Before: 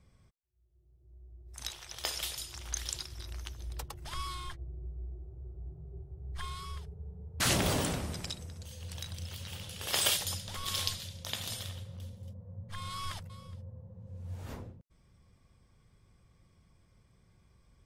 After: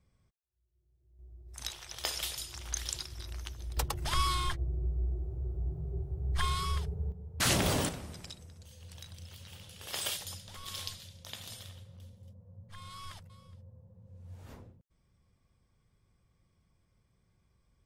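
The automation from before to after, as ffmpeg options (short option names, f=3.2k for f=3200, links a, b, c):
-af "asetnsamples=n=441:p=0,asendcmd='1.19 volume volume 0.5dB;3.77 volume volume 9dB;7.12 volume volume 0.5dB;7.89 volume volume -7dB',volume=-7.5dB"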